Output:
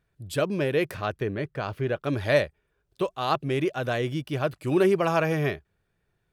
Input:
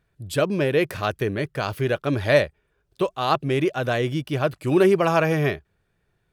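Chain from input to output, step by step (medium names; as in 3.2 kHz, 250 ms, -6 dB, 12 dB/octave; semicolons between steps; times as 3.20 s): 0.94–2.01 s: low-pass 3.3 kHz -> 1.9 kHz 6 dB/octave; trim -4 dB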